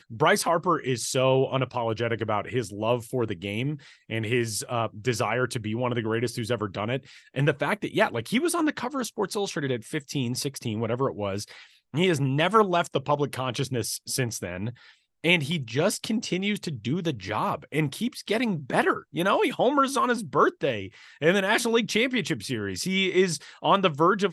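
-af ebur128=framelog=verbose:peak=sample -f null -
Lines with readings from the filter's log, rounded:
Integrated loudness:
  I:         -26.1 LUFS
  Threshold: -36.2 LUFS
Loudness range:
  LRA:         4.2 LU
  Threshold: -46.6 LUFS
  LRA low:   -28.4 LUFS
  LRA high:  -24.2 LUFS
Sample peak:
  Peak:       -5.2 dBFS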